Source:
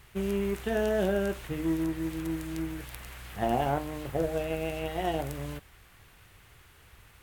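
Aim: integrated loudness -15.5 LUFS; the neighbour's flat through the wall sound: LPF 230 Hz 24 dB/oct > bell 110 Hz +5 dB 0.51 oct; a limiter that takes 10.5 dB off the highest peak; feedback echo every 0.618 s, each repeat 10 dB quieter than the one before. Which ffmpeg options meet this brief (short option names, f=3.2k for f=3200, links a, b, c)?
-af "alimiter=level_in=1dB:limit=-24dB:level=0:latency=1,volume=-1dB,lowpass=f=230:w=0.5412,lowpass=f=230:w=1.3066,equalizer=f=110:t=o:w=0.51:g=5,aecho=1:1:618|1236|1854|2472:0.316|0.101|0.0324|0.0104,volume=25.5dB"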